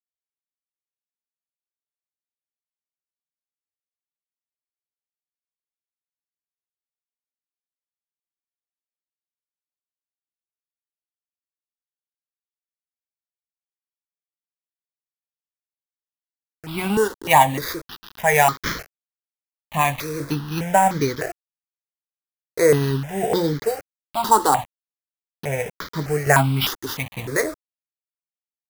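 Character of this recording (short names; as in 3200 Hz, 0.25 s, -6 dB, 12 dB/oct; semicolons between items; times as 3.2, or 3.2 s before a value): aliases and images of a low sample rate 8500 Hz, jitter 0%; tremolo saw down 0.99 Hz, depth 50%; a quantiser's noise floor 6-bit, dither none; notches that jump at a steady rate 3.3 Hz 640–2700 Hz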